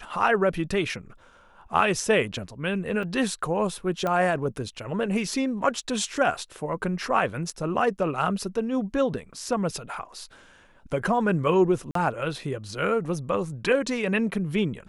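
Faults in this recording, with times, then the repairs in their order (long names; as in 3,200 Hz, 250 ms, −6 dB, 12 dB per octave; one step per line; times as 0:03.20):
0:03.03: drop-out 3.6 ms
0:04.07: click −15 dBFS
0:11.91–0:11.95: drop-out 43 ms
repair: click removal
repair the gap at 0:03.03, 3.6 ms
repair the gap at 0:11.91, 43 ms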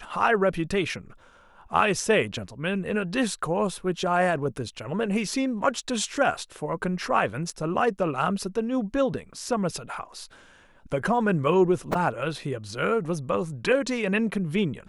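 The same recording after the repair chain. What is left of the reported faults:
none of them is left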